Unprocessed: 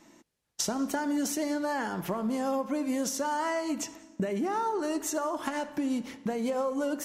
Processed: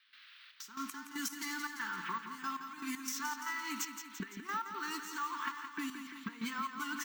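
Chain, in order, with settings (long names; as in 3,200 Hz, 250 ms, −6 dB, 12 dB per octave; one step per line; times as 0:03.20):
high-pass filter 220 Hz 24 dB per octave
downward expander −40 dBFS
Chebyshev band-stop filter 330–1,100 Hz, order 2
low-pass that shuts in the quiet parts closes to 520 Hz, open at −28 dBFS
low shelf with overshoot 800 Hz −12 dB, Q 1.5
comb filter 4.5 ms, depth 41%
downward compressor 5 to 1, threshold −47 dBFS, peak gain reduction 16 dB
noise in a band 1,300–4,100 Hz −68 dBFS
gate pattern ".xxx..x..x.xx" 117 BPM −12 dB
on a send: repeating echo 170 ms, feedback 59%, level −8.5 dB
on the sum: bad sample-rate conversion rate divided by 2×, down none, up hold
level +10 dB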